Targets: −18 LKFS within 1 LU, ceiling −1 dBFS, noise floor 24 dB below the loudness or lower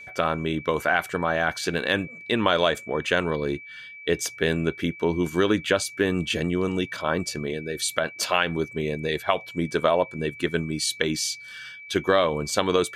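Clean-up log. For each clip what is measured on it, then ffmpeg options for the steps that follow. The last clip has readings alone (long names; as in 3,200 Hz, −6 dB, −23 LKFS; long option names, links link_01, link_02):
interfering tone 2,300 Hz; level of the tone −40 dBFS; integrated loudness −25.0 LKFS; sample peak −6.5 dBFS; target loudness −18.0 LKFS
→ -af "bandreject=frequency=2300:width=30"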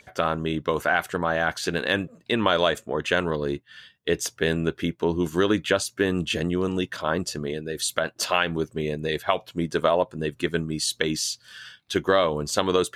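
interfering tone none found; integrated loudness −25.5 LKFS; sample peak −6.0 dBFS; target loudness −18.0 LKFS
→ -af "volume=7.5dB,alimiter=limit=-1dB:level=0:latency=1"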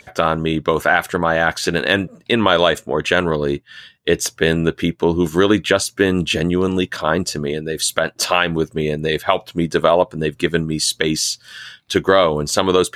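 integrated loudness −18.0 LKFS; sample peak −1.0 dBFS; background noise floor −54 dBFS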